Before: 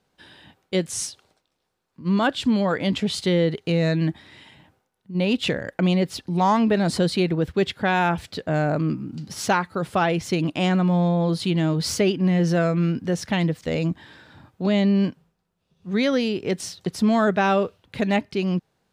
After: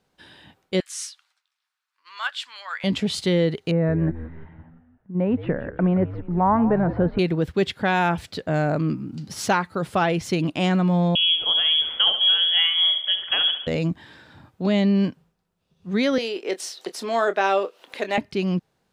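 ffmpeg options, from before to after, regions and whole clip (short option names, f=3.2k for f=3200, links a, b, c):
-filter_complex "[0:a]asettb=1/sr,asplit=3[a][b][c];[a]atrim=end=0.804[d];[b]atrim=start=0.8:end=2.84,asetpts=PTS-STARTPTS,afade=t=in:d=0.004:c=qsin,afade=t=out:st=2.036:d=0.004:c=qsin,highpass=f=1.2k:w=0.5412,highpass=f=1.2k:w=1.3066,highshelf=f=5.5k:g=-6.5,asplit=2[e][f];[f]adelay=12,volume=-13.5dB[g];[e][g]amix=inputs=2:normalize=0,atrim=end_sample=89964[h];[c]atrim=start=2.836[i];[d][h]acrossfade=d=0.004:c1=hsin:c2=qsin[j];[j][i]acrossfade=d=0.004:c1=qsin:c2=hsin,asettb=1/sr,asplit=3[k][l][m];[k]atrim=end=3.714[n];[l]atrim=start=3.71:end=7.19,asetpts=PTS-STARTPTS,afade=t=in:d=0.004:c=qsin,afade=t=out:st=3.476:d=0.004:c=qsin,lowpass=f=1.6k:w=0.5412,lowpass=f=1.6k:w=1.3066,asplit=6[o][p][q][r][s][t];[p]adelay=172,afreqshift=-82,volume=-13dB[u];[q]adelay=344,afreqshift=-164,volume=-18.5dB[v];[r]adelay=516,afreqshift=-246,volume=-24dB[w];[s]adelay=688,afreqshift=-328,volume=-29.5dB[x];[t]adelay=860,afreqshift=-410,volume=-35.1dB[y];[o][u][v][w][x][y]amix=inputs=6:normalize=0,atrim=end_sample=153468[z];[m]atrim=start=7.186[aa];[n][z]acrossfade=d=0.004:c1=hsin:c2=qsin[ab];[ab][aa]acrossfade=d=0.004:c1=qsin:c2=hsin,asettb=1/sr,asplit=3[ac][ad][ae];[ac]atrim=end=11.154[af];[ad]atrim=start=11.15:end=13.67,asetpts=PTS-STARTPTS,afade=t=in:d=0.004:c=qsin,afade=t=out:st=2.516:d=0.004:c=qsin,lowpass=f=3k:t=q:w=0.5098,lowpass=f=3k:t=q:w=0.6013,lowpass=f=3k:t=q:w=0.9,lowpass=f=3k:t=q:w=2.563,afreqshift=-3500,aecho=1:1:70|140|210|280|350|420:0.316|0.168|0.0888|0.0471|0.025|0.0132,atrim=end_sample=111132[ag];[ae]atrim=start=13.666[ah];[af][ag]acrossfade=d=0.004:c1=hsin:c2=qsin[ai];[ai][ah]acrossfade=d=0.004:c1=qsin:c2=hsin,asettb=1/sr,asplit=3[aj][ak][al];[aj]atrim=end=16.184[am];[ak]atrim=start=16.18:end=18.18,asetpts=PTS-STARTPTS,afade=t=in:d=0.004:c=qsin,afade=t=out:st=1.996:d=0.004:c=qsin,highpass=f=350:w=0.5412,highpass=f=350:w=1.3066,acompressor=mode=upward:threshold=-33dB:ratio=2.5:attack=3.2:release=140:knee=2.83:detection=peak,asplit=2[an][ao];[ao]adelay=26,volume=-12dB[ap];[an][ap]amix=inputs=2:normalize=0,atrim=end_sample=88200[aq];[al]atrim=start=18.176[ar];[am][aq]acrossfade=d=0.004:c1=hsin:c2=qsin[as];[as][ar]acrossfade=d=0.004:c1=qsin:c2=hsin"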